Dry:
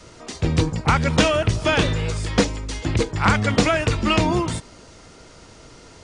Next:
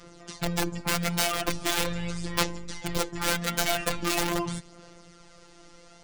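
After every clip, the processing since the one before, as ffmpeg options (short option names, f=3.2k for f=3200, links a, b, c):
-af "aeval=exprs='(mod(3.98*val(0)+1,2)-1)/3.98':c=same,afftfilt=real='hypot(re,im)*cos(PI*b)':imag='0':win_size=1024:overlap=0.75,aphaser=in_gain=1:out_gain=1:delay=4.5:decay=0.39:speed=0.41:type=sinusoidal,volume=-4.5dB"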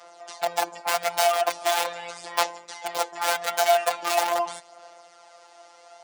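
-af "highpass=f=730:t=q:w=4.9"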